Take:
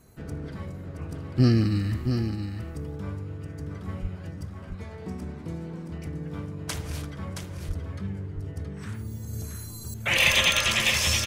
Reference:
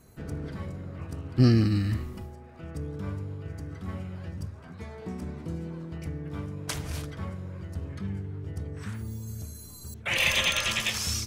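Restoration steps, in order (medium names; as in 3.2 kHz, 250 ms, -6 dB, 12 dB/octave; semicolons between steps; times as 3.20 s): de-plosive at 4.01/7.67 s; inverse comb 672 ms -7 dB; gain correction -4 dB, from 9.33 s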